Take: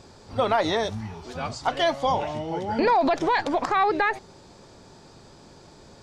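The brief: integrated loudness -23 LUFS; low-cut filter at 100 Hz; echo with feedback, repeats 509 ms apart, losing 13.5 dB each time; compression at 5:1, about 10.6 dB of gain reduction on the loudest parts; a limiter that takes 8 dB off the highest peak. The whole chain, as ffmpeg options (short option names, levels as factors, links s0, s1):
-af "highpass=100,acompressor=threshold=0.0316:ratio=5,alimiter=level_in=1.26:limit=0.0631:level=0:latency=1,volume=0.794,aecho=1:1:509|1018:0.211|0.0444,volume=4.22"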